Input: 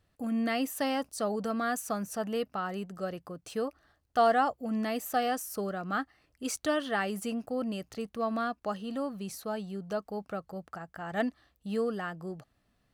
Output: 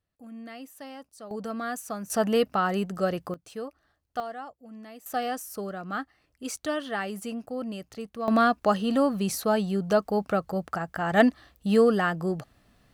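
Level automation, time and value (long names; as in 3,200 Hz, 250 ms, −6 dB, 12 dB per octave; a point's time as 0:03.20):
−12 dB
from 0:01.31 −1.5 dB
from 0:02.10 +9 dB
from 0:03.34 −3.5 dB
from 0:04.20 −13 dB
from 0:05.06 −0.5 dB
from 0:08.28 +11 dB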